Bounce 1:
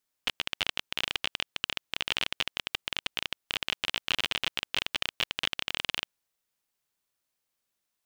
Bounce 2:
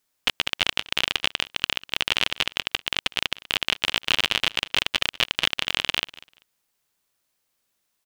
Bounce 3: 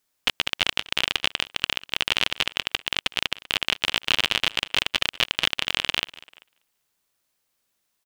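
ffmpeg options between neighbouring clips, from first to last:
-af "aecho=1:1:195|390:0.1|0.018,volume=7.5dB"
-filter_complex "[0:a]asplit=2[a][b];[b]adelay=390,highpass=300,lowpass=3.4k,asoftclip=type=hard:threshold=-10.5dB,volume=-26dB[c];[a][c]amix=inputs=2:normalize=0"

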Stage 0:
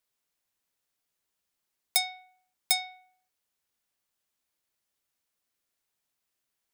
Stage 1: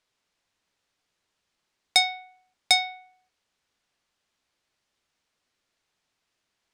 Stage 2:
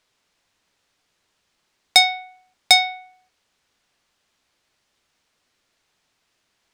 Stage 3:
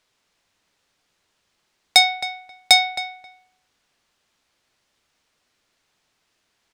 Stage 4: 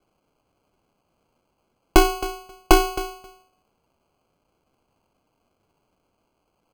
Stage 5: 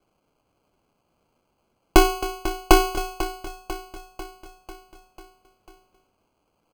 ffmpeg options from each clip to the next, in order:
-af "lowpass=5.5k,volume=9dB"
-af "asoftclip=type=tanh:threshold=-8dB,volume=8dB"
-filter_complex "[0:a]asplit=2[a][b];[b]adelay=267,lowpass=f=2k:p=1,volume=-10.5dB,asplit=2[c][d];[d]adelay=267,lowpass=f=2k:p=1,volume=0.17[e];[a][c][e]amix=inputs=3:normalize=0"
-af "acrusher=samples=24:mix=1:aa=0.000001"
-af "aecho=1:1:495|990|1485|1980|2475|2970:0.224|0.13|0.0753|0.0437|0.0253|0.0147"

